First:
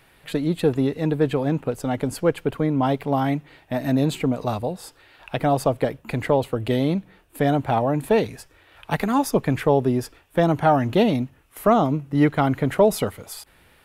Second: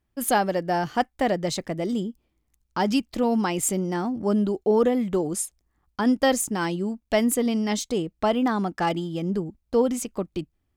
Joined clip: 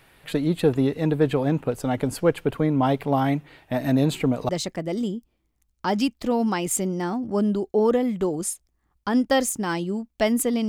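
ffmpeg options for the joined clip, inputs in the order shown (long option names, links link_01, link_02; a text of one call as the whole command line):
ffmpeg -i cue0.wav -i cue1.wav -filter_complex "[0:a]apad=whole_dur=10.68,atrim=end=10.68,atrim=end=4.492[link_01];[1:a]atrim=start=1.408:end=7.6[link_02];[link_01][link_02]acrossfade=duration=0.004:curve1=hsin:curve2=hsin" out.wav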